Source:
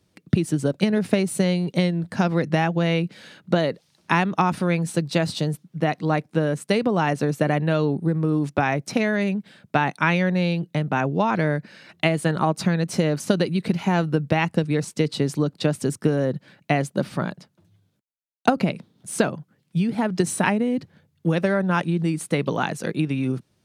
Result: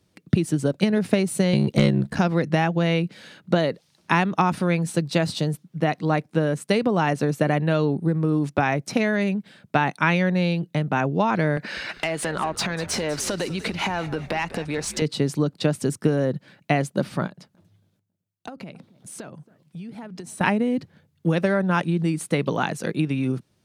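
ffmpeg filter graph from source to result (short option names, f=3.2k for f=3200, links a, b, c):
-filter_complex "[0:a]asettb=1/sr,asplit=3[a][b][c];[a]atrim=end=1.534[d];[b]atrim=start=1.53:end=2.19,asetpts=PTS-STARTPTS,afade=t=in:d=0.004:c=qsin,afade=t=out:st=0.656:d=0.004:c=qsin,aeval=exprs='val(0)*sin(2*PI*33*n/s)':c=same,aeval=exprs='0.422*sin(PI/2*1.41*val(0)/0.422)':c=same[e];[c]atrim=start=2.186[f];[d][e]acrossfade=d=0.004:c1=hsin:c2=qsin[g];[g][f]acrossfade=d=0.004:c1=qsin:c2=hsin,asettb=1/sr,asplit=3[h][i][j];[h]atrim=end=11.574[k];[i]atrim=start=11.57:end=15.02,asetpts=PTS-STARTPTS,afade=t=in:d=0.004:c=qsin,afade=t=out:st=3.446:d=0.004:c=qsin,acompressor=threshold=-32dB:ratio=5:attack=3.2:release=140:knee=1:detection=peak,asplit=2[l][m];[m]highpass=f=720:p=1,volume=22dB,asoftclip=type=tanh:threshold=-11dB[n];[l][n]amix=inputs=2:normalize=0,lowpass=f=4.8k:p=1,volume=-6dB,asplit=6[o][p][q][r][s][t];[p]adelay=197,afreqshift=-92,volume=-15.5dB[u];[q]adelay=394,afreqshift=-184,volume=-21.5dB[v];[r]adelay=591,afreqshift=-276,volume=-27.5dB[w];[s]adelay=788,afreqshift=-368,volume=-33.6dB[x];[t]adelay=985,afreqshift=-460,volume=-39.6dB[y];[o][u][v][w][x][y]amix=inputs=6:normalize=0,atrim=end_sample=152145[z];[j]atrim=start=15.016[aa];[k][z]acrossfade=d=0.004:c1=hsin:c2=qsin[ab];[ab][aa]acrossfade=d=0.004:c1=qsin:c2=hsin,asettb=1/sr,asplit=3[ac][ad][ae];[ac]atrim=end=17.274[af];[ad]atrim=start=17.27:end=20.41,asetpts=PTS-STARTPTS,afade=t=in:d=0.004:c=qsin,afade=t=out:st=3.136:d=0.004:c=qsin,highpass=46,acompressor=threshold=-39dB:ratio=3:attack=3.2:release=140:knee=1:detection=peak,asplit=2[ag][ah];[ah]adelay=275,lowpass=f=820:p=1,volume=-19dB,asplit=2[ai][aj];[aj]adelay=275,lowpass=f=820:p=1,volume=0.36,asplit=2[ak][al];[al]adelay=275,lowpass=f=820:p=1,volume=0.36[am];[ag][ai][ak][am]amix=inputs=4:normalize=0,atrim=end_sample=138474[an];[ae]atrim=start=20.406[ao];[af][an]acrossfade=d=0.004:c1=hsin:c2=qsin[ap];[ap][ao]acrossfade=d=0.004:c1=qsin:c2=hsin"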